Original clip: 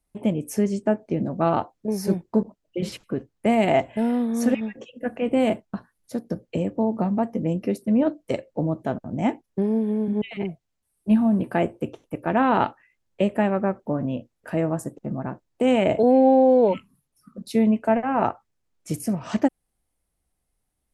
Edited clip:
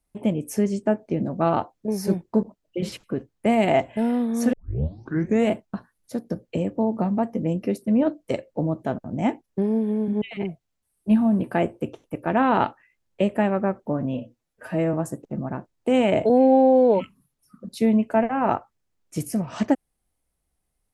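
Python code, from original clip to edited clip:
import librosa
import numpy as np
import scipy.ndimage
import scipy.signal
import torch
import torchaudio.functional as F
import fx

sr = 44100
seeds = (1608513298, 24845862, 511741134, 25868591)

y = fx.edit(x, sr, fx.tape_start(start_s=4.53, length_s=0.98),
    fx.stretch_span(start_s=14.14, length_s=0.53, factor=1.5), tone=tone)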